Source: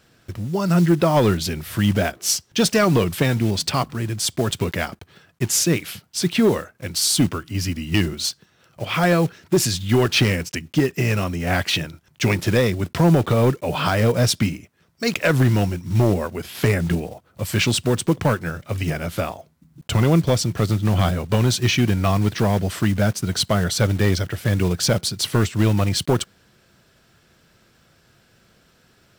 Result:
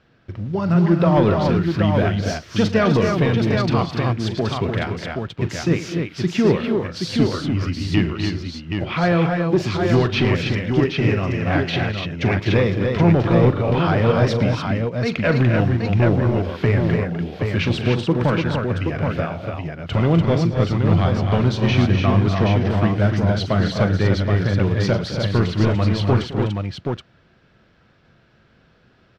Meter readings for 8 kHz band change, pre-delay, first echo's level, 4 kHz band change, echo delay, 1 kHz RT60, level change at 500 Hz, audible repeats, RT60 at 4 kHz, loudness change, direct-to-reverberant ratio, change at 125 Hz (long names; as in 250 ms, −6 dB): below −15 dB, no reverb audible, −13.0 dB, −4.5 dB, 41 ms, no reverb audible, +2.0 dB, 6, no reverb audible, +1.0 dB, no reverb audible, +2.5 dB